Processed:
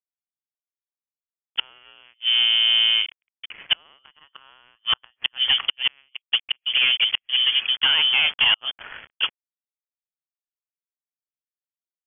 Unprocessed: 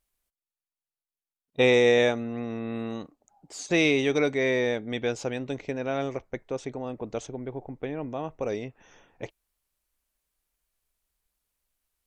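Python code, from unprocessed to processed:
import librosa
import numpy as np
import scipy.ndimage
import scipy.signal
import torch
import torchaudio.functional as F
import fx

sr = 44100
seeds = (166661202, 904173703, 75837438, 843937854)

p1 = fx.highpass(x, sr, hz=58.0, slope=6)
p2 = fx.peak_eq(p1, sr, hz=580.0, db=-4.0, octaves=0.97)
p3 = fx.rider(p2, sr, range_db=4, speed_s=2.0)
p4 = p2 + (p3 * 10.0 ** (-2.0 / 20.0))
p5 = fx.quant_dither(p4, sr, seeds[0], bits=8, dither='none')
p6 = fx.filter_lfo_lowpass(p5, sr, shape='sine', hz=0.27, low_hz=900.0, high_hz=2100.0, q=2.1)
p7 = fx.gate_flip(p6, sr, shuts_db=-13.0, range_db=-36)
p8 = fx.leveller(p7, sr, passes=3)
y = fx.freq_invert(p8, sr, carrier_hz=3300)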